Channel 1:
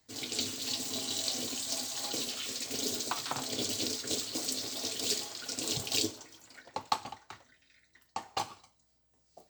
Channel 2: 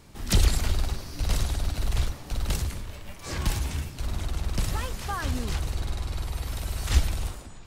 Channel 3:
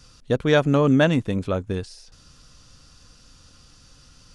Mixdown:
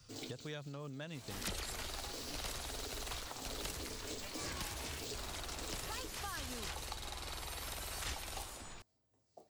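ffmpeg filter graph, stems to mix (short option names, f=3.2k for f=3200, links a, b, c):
-filter_complex "[0:a]equalizer=f=350:t=o:w=2.8:g=11,volume=-9dB[a];[1:a]adelay=1150,volume=1dB[b];[2:a]equalizer=f=140:w=4.8:g=6.5,volume=-11dB,asplit=2[c][d];[d]apad=whole_len=418589[e];[a][e]sidechaincompress=threshold=-33dB:ratio=8:attack=11:release=507[f];[f][c]amix=inputs=2:normalize=0,equalizer=f=100:t=o:w=0.72:g=12,acompressor=threshold=-31dB:ratio=10,volume=0dB[g];[b][g]amix=inputs=2:normalize=0,lowshelf=f=370:g=-6.5,acrossover=split=290|2500[h][i][j];[h]acompressor=threshold=-49dB:ratio=4[k];[i]acompressor=threshold=-47dB:ratio=4[l];[j]acompressor=threshold=-45dB:ratio=4[m];[k][l][m]amix=inputs=3:normalize=0"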